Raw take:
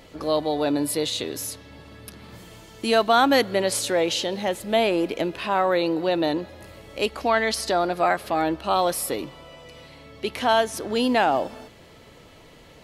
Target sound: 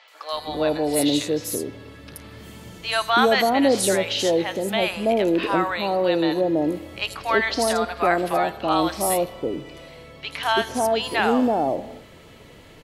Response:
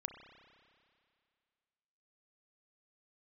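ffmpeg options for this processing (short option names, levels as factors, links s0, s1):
-filter_complex "[0:a]acrossover=split=790|5100[s0][s1][s2];[s2]adelay=80[s3];[s0]adelay=330[s4];[s4][s1][s3]amix=inputs=3:normalize=0,asplit=2[s5][s6];[1:a]atrim=start_sample=2205,afade=t=out:st=0.37:d=0.01,atrim=end_sample=16758[s7];[s6][s7]afir=irnorm=-1:irlink=0,volume=0.562[s8];[s5][s8]amix=inputs=2:normalize=0"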